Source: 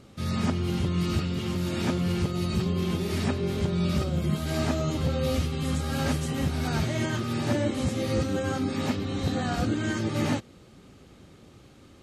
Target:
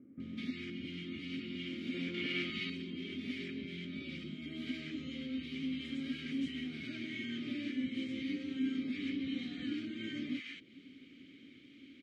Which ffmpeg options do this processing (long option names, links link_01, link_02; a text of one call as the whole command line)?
ffmpeg -i in.wav -filter_complex "[0:a]equalizer=frequency=2300:width_type=o:width=2.9:gain=8.5,acompressor=threshold=-30dB:ratio=10,asplit=3[link_01][link_02][link_03];[link_01]bandpass=frequency=270:width_type=q:width=8,volume=0dB[link_04];[link_02]bandpass=frequency=2290:width_type=q:width=8,volume=-6dB[link_05];[link_03]bandpass=frequency=3010:width_type=q:width=8,volume=-9dB[link_06];[link_04][link_05][link_06]amix=inputs=3:normalize=0,asettb=1/sr,asplit=3[link_07][link_08][link_09];[link_07]atrim=end=1.944[link_10];[link_08]atrim=start=1.94:end=2.5,asetpts=PTS-STARTPTS,afade=type=in:duration=0.004:curve=qsin,afade=type=out:start_time=0.556:duration=0.004:curve=qsin,asplit=2[link_11][link_12];[link_12]highpass=frequency=720:poles=1,volume=19dB,asoftclip=type=tanh:threshold=-17.5dB[link_13];[link_11][link_13]amix=inputs=2:normalize=0,lowpass=frequency=2800:poles=1,volume=-6dB[link_14];[link_09]atrim=start=2.496[link_15];[link_10][link_14]acrossfade=duration=0.004:curve1=hsin:curve2=qsin[link_16];[link_16][link_15]acrossfade=duration=0.004:curve1=qsin:curve2=hsin,acrossover=split=1100[link_17][link_18];[link_18]adelay=200[link_19];[link_17][link_19]amix=inputs=2:normalize=0,volume=4.5dB" out.wav